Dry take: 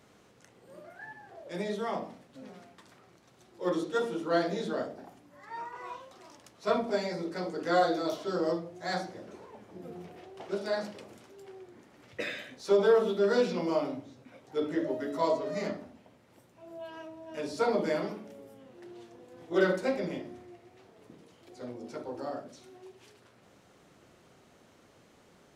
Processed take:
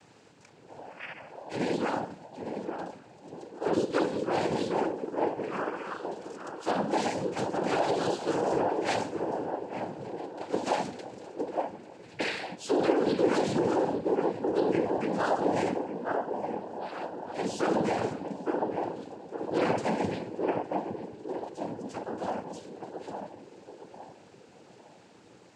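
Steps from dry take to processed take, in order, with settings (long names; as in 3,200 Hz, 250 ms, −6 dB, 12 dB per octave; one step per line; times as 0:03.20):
parametric band 1,200 Hz −3.5 dB 0.36 octaves
on a send: feedback echo with a band-pass in the loop 860 ms, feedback 41%, band-pass 450 Hz, level −5 dB
on the sum: brickwall limiter −23 dBFS, peak gain reduction 9.5 dB
cochlear-implant simulation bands 8
level +4.5 dB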